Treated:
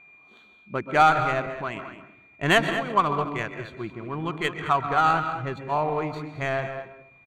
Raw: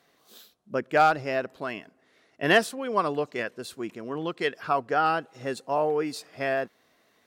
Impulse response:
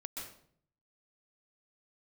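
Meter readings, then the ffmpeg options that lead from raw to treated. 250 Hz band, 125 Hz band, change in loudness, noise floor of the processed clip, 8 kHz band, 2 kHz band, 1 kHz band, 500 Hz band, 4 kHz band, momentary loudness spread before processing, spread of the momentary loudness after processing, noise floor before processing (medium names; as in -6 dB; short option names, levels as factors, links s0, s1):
+1.5 dB, +8.5 dB, +2.5 dB, -55 dBFS, -1.0 dB, +2.0 dB, +4.0 dB, -1.5 dB, +2.0 dB, 14 LU, 16 LU, -66 dBFS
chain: -filter_complex "[0:a]equalizer=f=250:t=o:w=0.33:g=-6,equalizer=f=500:t=o:w=0.33:g=-6,equalizer=f=10000:t=o:w=0.33:g=-11,aeval=exprs='val(0)+0.00398*sin(2*PI*2400*n/s)':c=same,aecho=1:1:0.9:0.32,asplit=2[s0][s1];[1:a]atrim=start_sample=2205[s2];[s1][s2]afir=irnorm=-1:irlink=0,volume=0.944[s3];[s0][s3]amix=inputs=2:normalize=0,adynamicsmooth=sensitivity=1.5:basefreq=1900,asuperstop=centerf=5200:order=4:qfactor=4.1,asplit=2[s4][s5];[s5]adelay=215.7,volume=0.282,highshelf=f=4000:g=-4.85[s6];[s4][s6]amix=inputs=2:normalize=0,asubboost=boost=4:cutoff=120"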